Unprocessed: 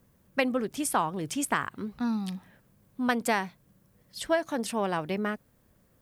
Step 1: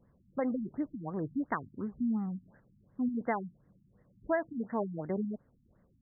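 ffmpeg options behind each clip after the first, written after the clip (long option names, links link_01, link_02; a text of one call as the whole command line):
ffmpeg -i in.wav -filter_complex "[0:a]asplit=2[link_01][link_02];[link_02]alimiter=limit=-22.5dB:level=0:latency=1:release=117,volume=2dB[link_03];[link_01][link_03]amix=inputs=2:normalize=0,afftfilt=real='re*lt(b*sr/1024,280*pow(2200/280,0.5+0.5*sin(2*PI*2.8*pts/sr)))':imag='im*lt(b*sr/1024,280*pow(2200/280,0.5+0.5*sin(2*PI*2.8*pts/sr)))':win_size=1024:overlap=0.75,volume=-8.5dB" out.wav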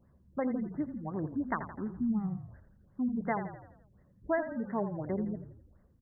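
ffmpeg -i in.wav -filter_complex "[0:a]equalizer=frequency=72:width=5.7:gain=14,bandreject=frequency=480:width=14,asplit=2[link_01][link_02];[link_02]asplit=6[link_03][link_04][link_05][link_06][link_07][link_08];[link_03]adelay=84,afreqshift=-33,volume=-10dB[link_09];[link_04]adelay=168,afreqshift=-66,volume=-15.7dB[link_10];[link_05]adelay=252,afreqshift=-99,volume=-21.4dB[link_11];[link_06]adelay=336,afreqshift=-132,volume=-27dB[link_12];[link_07]adelay=420,afreqshift=-165,volume=-32.7dB[link_13];[link_08]adelay=504,afreqshift=-198,volume=-38.4dB[link_14];[link_09][link_10][link_11][link_12][link_13][link_14]amix=inputs=6:normalize=0[link_15];[link_01][link_15]amix=inputs=2:normalize=0" out.wav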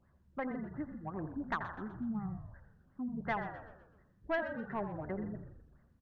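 ffmpeg -i in.wav -filter_complex "[0:a]asplit=2[link_01][link_02];[link_02]highpass=frequency=720:poles=1,volume=11dB,asoftclip=type=tanh:threshold=-18.5dB[link_03];[link_01][link_03]amix=inputs=2:normalize=0,lowpass=frequency=1600:poles=1,volume=-6dB,equalizer=frequency=125:width_type=o:width=1:gain=-3,equalizer=frequency=250:width_type=o:width=1:gain=-6,equalizer=frequency=500:width_type=o:width=1:gain=-9,equalizer=frequency=1000:width_type=o:width=1:gain=-5,asplit=6[link_04][link_05][link_06][link_07][link_08][link_09];[link_05]adelay=125,afreqshift=-88,volume=-12dB[link_10];[link_06]adelay=250,afreqshift=-176,volume=-18.6dB[link_11];[link_07]adelay=375,afreqshift=-264,volume=-25.1dB[link_12];[link_08]adelay=500,afreqshift=-352,volume=-31.7dB[link_13];[link_09]adelay=625,afreqshift=-440,volume=-38.2dB[link_14];[link_04][link_10][link_11][link_12][link_13][link_14]amix=inputs=6:normalize=0,volume=2.5dB" out.wav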